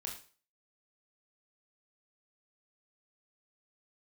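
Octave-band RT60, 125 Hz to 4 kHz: 0.35, 0.35, 0.40, 0.40, 0.40, 0.40 s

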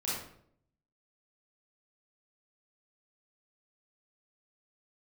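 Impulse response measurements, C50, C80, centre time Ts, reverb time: -1.0 dB, 4.0 dB, 66 ms, 0.65 s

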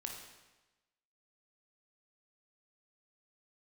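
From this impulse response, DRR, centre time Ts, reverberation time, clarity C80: 1.0 dB, 43 ms, 1.1 s, 6.0 dB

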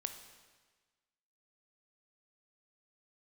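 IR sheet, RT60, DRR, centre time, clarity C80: 1.4 s, 7.0 dB, 20 ms, 10.5 dB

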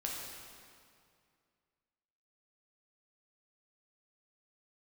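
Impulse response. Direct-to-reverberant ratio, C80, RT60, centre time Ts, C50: -3.0 dB, 1.5 dB, 2.3 s, 0.109 s, 0.0 dB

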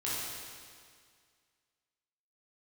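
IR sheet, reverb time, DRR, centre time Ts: 2.0 s, -8.5 dB, 0.137 s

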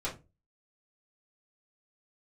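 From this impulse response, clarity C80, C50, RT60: 18.5 dB, 11.0 dB, 0.25 s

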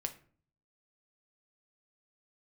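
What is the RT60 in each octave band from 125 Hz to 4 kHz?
0.80, 0.65, 0.50, 0.45, 0.40, 0.30 s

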